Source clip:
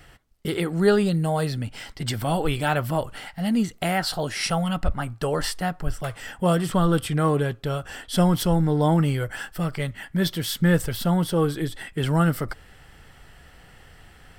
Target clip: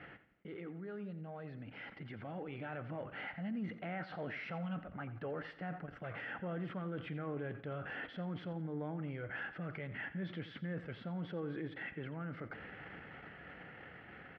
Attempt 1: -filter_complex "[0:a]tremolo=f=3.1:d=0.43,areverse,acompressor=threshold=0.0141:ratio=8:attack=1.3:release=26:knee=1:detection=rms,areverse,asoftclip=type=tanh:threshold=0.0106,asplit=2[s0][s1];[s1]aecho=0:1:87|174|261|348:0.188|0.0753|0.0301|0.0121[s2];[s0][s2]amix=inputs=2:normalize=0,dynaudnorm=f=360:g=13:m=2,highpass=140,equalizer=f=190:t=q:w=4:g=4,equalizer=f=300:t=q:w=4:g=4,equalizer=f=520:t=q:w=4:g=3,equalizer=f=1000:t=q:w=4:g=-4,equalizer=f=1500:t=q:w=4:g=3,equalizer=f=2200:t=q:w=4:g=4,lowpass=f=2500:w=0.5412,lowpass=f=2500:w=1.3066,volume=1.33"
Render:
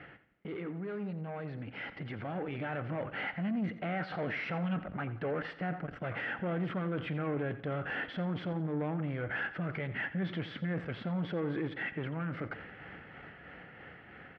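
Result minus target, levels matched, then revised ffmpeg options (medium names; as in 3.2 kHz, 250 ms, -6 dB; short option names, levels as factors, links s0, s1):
compression: peak gain reduction -10 dB
-filter_complex "[0:a]tremolo=f=3.1:d=0.43,areverse,acompressor=threshold=0.00376:ratio=8:attack=1.3:release=26:knee=1:detection=rms,areverse,asoftclip=type=tanh:threshold=0.0106,asplit=2[s0][s1];[s1]aecho=0:1:87|174|261|348:0.188|0.0753|0.0301|0.0121[s2];[s0][s2]amix=inputs=2:normalize=0,dynaudnorm=f=360:g=13:m=2,highpass=140,equalizer=f=190:t=q:w=4:g=4,equalizer=f=300:t=q:w=4:g=4,equalizer=f=520:t=q:w=4:g=3,equalizer=f=1000:t=q:w=4:g=-4,equalizer=f=1500:t=q:w=4:g=3,equalizer=f=2200:t=q:w=4:g=4,lowpass=f=2500:w=0.5412,lowpass=f=2500:w=1.3066,volume=1.33"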